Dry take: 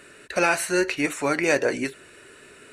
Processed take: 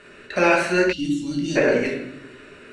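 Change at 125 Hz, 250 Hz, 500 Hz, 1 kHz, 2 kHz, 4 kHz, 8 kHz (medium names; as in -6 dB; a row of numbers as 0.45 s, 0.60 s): +6.5 dB, +5.0 dB, +3.5 dB, +2.0 dB, +1.5 dB, +1.5 dB, -6.0 dB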